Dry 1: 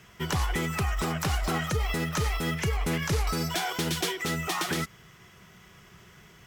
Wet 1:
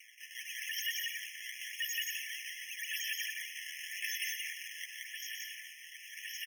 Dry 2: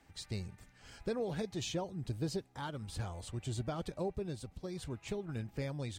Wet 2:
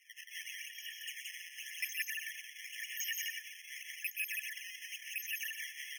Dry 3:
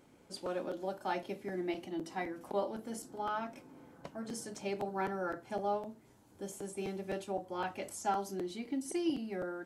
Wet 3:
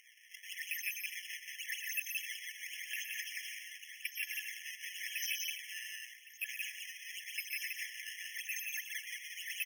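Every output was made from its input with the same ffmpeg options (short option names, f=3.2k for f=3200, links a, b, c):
-filter_complex "[0:a]afftfilt=real='real(if(lt(b,272),68*(eq(floor(b/68),0)*3+eq(floor(b/68),1)*2+eq(floor(b/68),2)*1+eq(floor(b/68),3)*0)+mod(b,68),b),0)':imag='imag(if(lt(b,272),68*(eq(floor(b/68),0)*3+eq(floor(b/68),1)*2+eq(floor(b/68),2)*1+eq(floor(b/68),3)*0)+mod(b,68),b),0)':win_size=2048:overlap=0.75,acrossover=split=3800[a][b];[b]acompressor=threshold=-36dB:ratio=4:attack=1:release=60[c];[a][c]amix=inputs=2:normalize=0,aecho=1:1:3.4:0.52,alimiter=level_in=1dB:limit=-24dB:level=0:latency=1:release=439,volume=-1dB,areverse,acompressor=threshold=-46dB:ratio=5,areverse,acrusher=samples=22:mix=1:aa=0.000001:lfo=1:lforange=35.2:lforate=0.9,aecho=1:1:122.4|174.9|256.6:0.355|0.794|0.282,afftfilt=real='re*eq(mod(floor(b*sr/1024/1700),2),1)':imag='im*eq(mod(floor(b*sr/1024/1700),2),1)':win_size=1024:overlap=0.75,volume=12.5dB"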